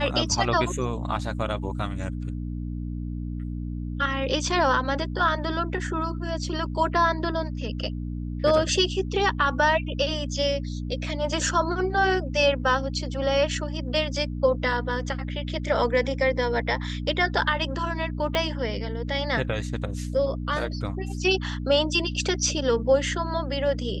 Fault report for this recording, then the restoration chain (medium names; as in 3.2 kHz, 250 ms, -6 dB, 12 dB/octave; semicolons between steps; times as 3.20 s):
hum 60 Hz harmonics 5 -31 dBFS
18.35 s: pop -11 dBFS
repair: de-click; de-hum 60 Hz, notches 5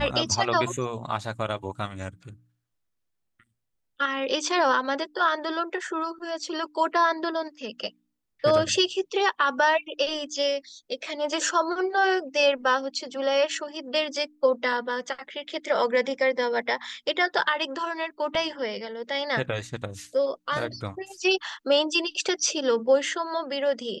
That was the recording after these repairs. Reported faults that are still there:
18.35 s: pop